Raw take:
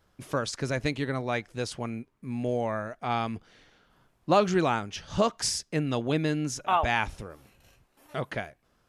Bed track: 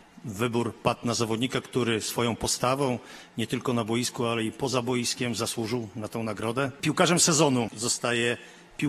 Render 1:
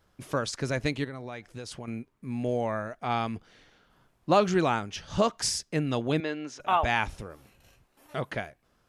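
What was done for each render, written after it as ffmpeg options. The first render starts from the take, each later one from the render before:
-filter_complex "[0:a]asettb=1/sr,asplit=3[s0][s1][s2];[s0]atrim=end=1.044[s3];[s1]atrim=start=1.04:end=1.88,asetpts=PTS-STARTPTS,afade=t=in:d=0.004:c=qsin,afade=t=out:st=0.836:d=0.004:c=qsin,acompressor=threshold=0.0178:ratio=6:attack=3.2:release=140:knee=1:detection=peak[s4];[s2]atrim=start=1.876[s5];[s3][s4]acrossfade=d=0.004:c1=hsin:c2=qsin[s6];[s6][s5]acrossfade=d=0.004:c1=qsin:c2=hsin,asettb=1/sr,asplit=3[s7][s8][s9];[s7]atrim=end=6.204[s10];[s8]atrim=start=6.2:end=6.6,asetpts=PTS-STARTPTS,afade=t=in:d=0.004:c=qsin,afade=t=out:st=0.396:d=0.004:c=qsin,highpass=400,lowpass=3600[s11];[s9]atrim=start=6.596[s12];[s10][s11]acrossfade=d=0.004:c1=hsin:c2=qsin[s13];[s13][s12]acrossfade=d=0.004:c1=qsin:c2=hsin"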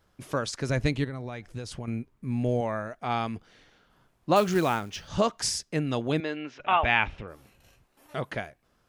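-filter_complex "[0:a]asettb=1/sr,asplit=3[s0][s1][s2];[s0]atrim=end=0.694[s3];[s1]atrim=start=0.69:end=2.61,asetpts=PTS-STARTPTS,afade=t=in:d=0.004:c=qsin,afade=t=out:st=1.916:d=0.004:c=qsin,lowshelf=f=150:g=10.5[s4];[s2]atrim=start=2.606[s5];[s3][s4]acrossfade=d=0.004:c1=hsin:c2=qsin[s6];[s6][s5]acrossfade=d=0.004:c1=qsin:c2=hsin,asettb=1/sr,asplit=3[s7][s8][s9];[s7]atrim=end=4.364[s10];[s8]atrim=start=4.36:end=5.08,asetpts=PTS-STARTPTS,afade=t=in:d=0.004:c=qsin,afade=t=out:st=0.716:d=0.004:c=qsin,acrusher=bits=5:mode=log:mix=0:aa=0.000001[s11];[s9]atrim=start=5.076[s12];[s10][s11]acrossfade=d=0.004:c1=hsin:c2=qsin[s13];[s13][s12]acrossfade=d=0.004:c1=qsin:c2=hsin,asettb=1/sr,asplit=3[s14][s15][s16];[s14]atrim=end=6.364[s17];[s15]atrim=start=6.36:end=7.28,asetpts=PTS-STARTPTS,afade=t=in:d=0.004:c=qsin,afade=t=out:st=0.916:d=0.004:c=qsin,lowpass=f=2700:t=q:w=2.1[s18];[s16]atrim=start=7.276[s19];[s17][s18]acrossfade=d=0.004:c1=hsin:c2=qsin[s20];[s20][s19]acrossfade=d=0.004:c1=qsin:c2=hsin"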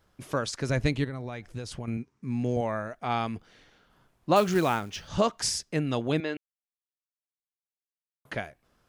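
-filter_complex "[0:a]asettb=1/sr,asplit=3[s0][s1][s2];[s0]atrim=end=1.974[s3];[s1]atrim=start=1.97:end=2.57,asetpts=PTS-STARTPTS,afade=t=in:d=0.004:c=qsin,afade=t=out:st=0.596:d=0.004:c=qsin,highpass=110,equalizer=f=600:t=q:w=4:g=-9,equalizer=f=3300:t=q:w=4:g=-3,equalizer=f=5700:t=q:w=4:g=9,lowpass=f=8600:w=0.5412,lowpass=f=8600:w=1.3066[s4];[s2]atrim=start=2.566[s5];[s3][s4]acrossfade=d=0.004:c1=hsin:c2=qsin[s6];[s6][s5]acrossfade=d=0.004:c1=qsin:c2=hsin,asplit=3[s7][s8][s9];[s7]atrim=end=6.37,asetpts=PTS-STARTPTS,afade=t=out:st=6.366:d=0.004:c=hsin[s10];[s8]atrim=start=6.37:end=8.25,asetpts=PTS-STARTPTS,volume=0[s11];[s9]atrim=start=8.25,asetpts=PTS-STARTPTS,afade=t=in:d=0.004:c=hsin[s12];[s10][s11][s12]concat=n=3:v=0:a=1"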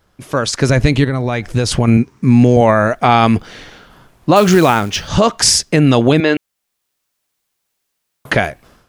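-af "dynaudnorm=f=310:g=3:m=6.31,alimiter=level_in=2.51:limit=0.891:release=50:level=0:latency=1"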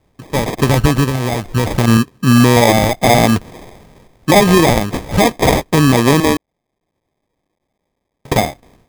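-af "acrusher=samples=31:mix=1:aa=0.000001"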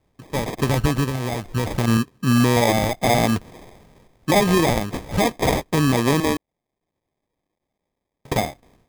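-af "volume=0.422"

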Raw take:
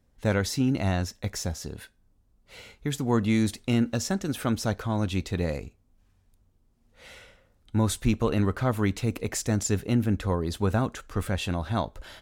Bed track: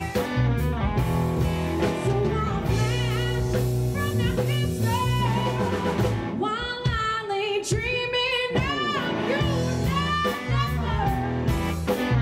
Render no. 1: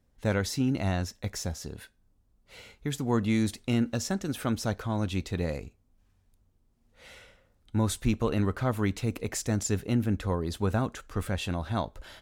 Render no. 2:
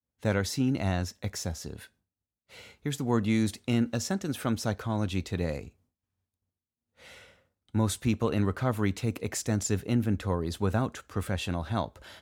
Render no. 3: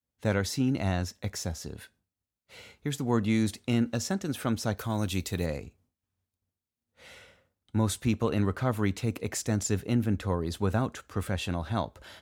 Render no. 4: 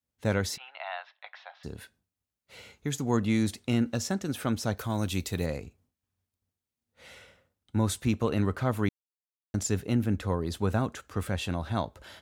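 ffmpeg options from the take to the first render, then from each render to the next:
-af "volume=0.75"
-af "highpass=f=65:w=0.5412,highpass=f=65:w=1.3066,agate=range=0.0224:threshold=0.001:ratio=3:detection=peak"
-filter_complex "[0:a]asplit=3[s0][s1][s2];[s0]afade=t=out:st=4.77:d=0.02[s3];[s1]aemphasis=mode=production:type=50fm,afade=t=in:st=4.77:d=0.02,afade=t=out:st=5.45:d=0.02[s4];[s2]afade=t=in:st=5.45:d=0.02[s5];[s3][s4][s5]amix=inputs=3:normalize=0"
-filter_complex "[0:a]asplit=3[s0][s1][s2];[s0]afade=t=out:st=0.56:d=0.02[s3];[s1]asuperpass=centerf=1600:order=12:qfactor=0.53,afade=t=in:st=0.56:d=0.02,afade=t=out:st=1.63:d=0.02[s4];[s2]afade=t=in:st=1.63:d=0.02[s5];[s3][s4][s5]amix=inputs=3:normalize=0,asettb=1/sr,asplit=3[s6][s7][s8];[s6]atrim=end=2.734[s9];[s7]atrim=start=2.73:end=3.17,asetpts=PTS-STARTPTS,afade=t=in:d=0.004:c=qsin,afade=t=out:st=0.436:d=0.004:c=qsin,equalizer=f=6600:w=6.6:g=9[s10];[s8]atrim=start=3.166[s11];[s9][s10]acrossfade=d=0.004:c1=hsin:c2=qsin[s12];[s12][s11]acrossfade=d=0.004:c1=qsin:c2=hsin,asplit=3[s13][s14][s15];[s13]atrim=end=8.89,asetpts=PTS-STARTPTS,afade=t=out:st=8.886:d=0.004:c=hsin[s16];[s14]atrim=start=8.89:end=9.54,asetpts=PTS-STARTPTS,volume=0[s17];[s15]atrim=start=9.54,asetpts=PTS-STARTPTS,afade=t=in:d=0.004:c=hsin[s18];[s16][s17][s18]concat=n=3:v=0:a=1"

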